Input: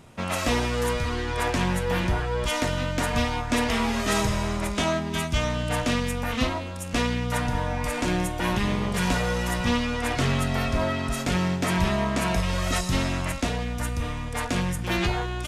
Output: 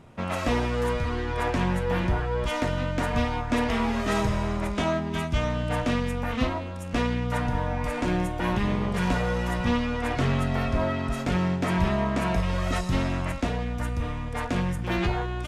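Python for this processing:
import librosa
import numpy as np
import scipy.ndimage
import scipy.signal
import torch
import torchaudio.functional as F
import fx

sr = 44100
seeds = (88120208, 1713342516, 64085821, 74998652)

y = fx.high_shelf(x, sr, hz=3400.0, db=-12.0)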